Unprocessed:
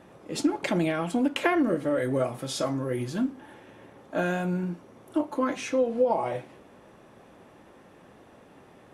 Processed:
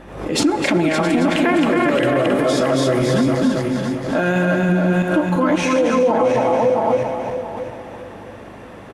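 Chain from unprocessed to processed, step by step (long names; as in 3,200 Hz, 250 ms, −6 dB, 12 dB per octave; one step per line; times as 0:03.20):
feedback delay that plays each chunk backwards 335 ms, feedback 52%, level −3 dB
parametric band 2,000 Hz +2 dB 1.4 octaves
on a send at −13.5 dB: convolution reverb RT60 3.0 s, pre-delay 63 ms
on the sum: mains hum 50 Hz, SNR 30 dB
high-shelf EQ 6,100 Hz −5.5 dB
single-tap delay 270 ms −5 dB
boost into a limiter +18.5 dB
background raised ahead of every attack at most 74 dB per second
level −7.5 dB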